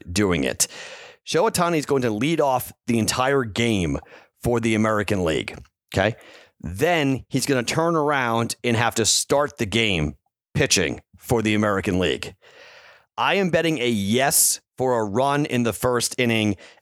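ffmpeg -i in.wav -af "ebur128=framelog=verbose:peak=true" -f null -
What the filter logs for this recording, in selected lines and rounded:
Integrated loudness:
  I:         -21.4 LUFS
  Threshold: -31.9 LUFS
Loudness range:
  LRA:         2.8 LU
  Threshold: -41.9 LUFS
  LRA low:   -23.3 LUFS
  LRA high:  -20.5 LUFS
True peak:
  Peak:       -2.8 dBFS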